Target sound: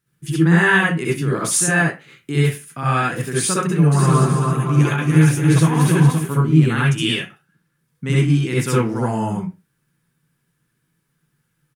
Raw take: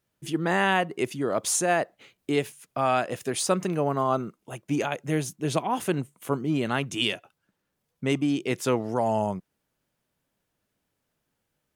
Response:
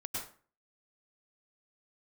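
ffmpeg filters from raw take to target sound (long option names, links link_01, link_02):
-filter_complex "[0:a]equalizer=frequency=160:width_type=o:width=0.67:gain=10,equalizer=frequency=630:width_type=o:width=0.67:gain=-12,equalizer=frequency=1600:width_type=o:width=0.67:gain=6,equalizer=frequency=10000:width_type=o:width=0.67:gain=6,asplit=3[link_01][link_02][link_03];[link_01]afade=type=out:start_time=3.91:duration=0.02[link_04];[link_02]aecho=1:1:290|522|707.6|856.1|974.9:0.631|0.398|0.251|0.158|0.1,afade=type=in:start_time=3.91:duration=0.02,afade=type=out:start_time=6.17:duration=0.02[link_05];[link_03]afade=type=in:start_time=6.17:duration=0.02[link_06];[link_04][link_05][link_06]amix=inputs=3:normalize=0[link_07];[1:a]atrim=start_sample=2205,asetrate=70560,aresample=44100[link_08];[link_07][link_08]afir=irnorm=-1:irlink=0,volume=8dB"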